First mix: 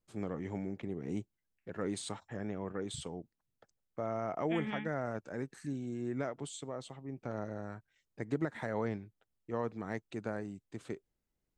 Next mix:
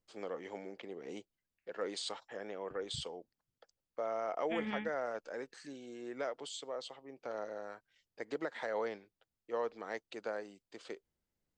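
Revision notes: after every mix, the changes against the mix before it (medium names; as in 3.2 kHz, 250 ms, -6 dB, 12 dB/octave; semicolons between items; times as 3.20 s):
first voice: add cabinet simulation 480–7600 Hz, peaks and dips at 500 Hz +6 dB, 3.1 kHz +6 dB, 4.7 kHz +9 dB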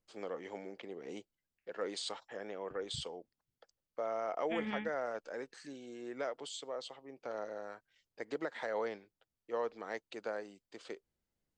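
no change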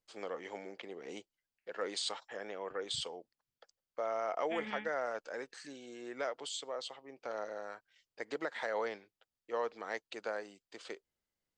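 first voice +4.0 dB; master: add bass shelf 490 Hz -8 dB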